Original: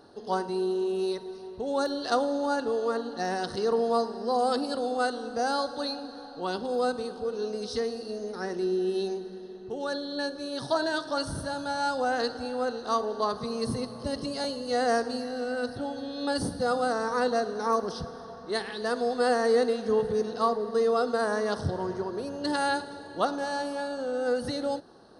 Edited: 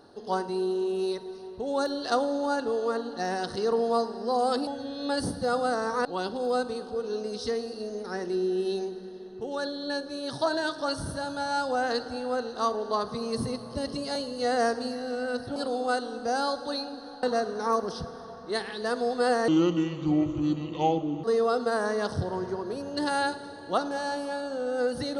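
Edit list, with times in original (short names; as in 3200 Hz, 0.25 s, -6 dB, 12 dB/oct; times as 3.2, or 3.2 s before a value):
4.67–6.34 swap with 15.85–17.23
19.48–20.71 speed 70%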